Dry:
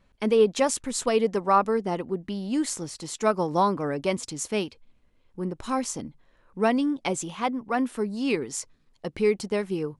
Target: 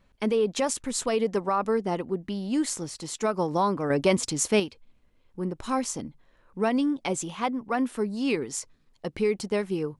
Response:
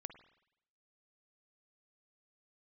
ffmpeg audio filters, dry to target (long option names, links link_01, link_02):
-filter_complex "[0:a]alimiter=limit=-16dB:level=0:latency=1:release=53,asettb=1/sr,asplit=3[link_01][link_02][link_03];[link_01]atrim=end=3.904[link_04];[link_02]atrim=start=3.9:end=4.6,asetpts=PTS-STARTPTS,afade=type=in:duration=0.004:curve=qsin,afade=type=out:start_time=0.696:duration=0.004:curve=qsin,acontrast=45[link_05];[link_03]atrim=start=4.596[link_06];[link_04][link_05]acrossfade=duration=0.004:curve1=hsin:curve2=qsin[link_07];[link_07][link_06]acrossfade=duration=0.004:curve1=qsin:curve2=hsin"